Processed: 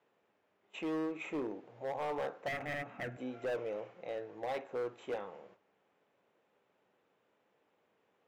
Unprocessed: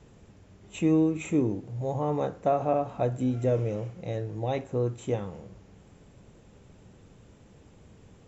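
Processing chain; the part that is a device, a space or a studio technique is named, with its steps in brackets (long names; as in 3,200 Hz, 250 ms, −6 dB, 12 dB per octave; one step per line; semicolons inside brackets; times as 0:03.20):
walkie-talkie (band-pass filter 560–2,700 Hz; hard clipping −31.5 dBFS, distortion −7 dB; noise gate −58 dBFS, range −10 dB)
0:02.48–0:03.17: octave-band graphic EQ 125/250/500/1,000/2,000/4,000 Hz +9/+8/−7/−11/+10/−7 dB
level −1 dB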